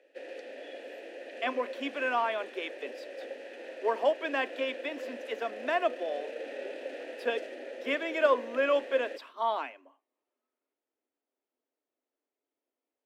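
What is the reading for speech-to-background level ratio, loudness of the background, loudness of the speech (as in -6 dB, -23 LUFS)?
10.5 dB, -42.5 LUFS, -32.0 LUFS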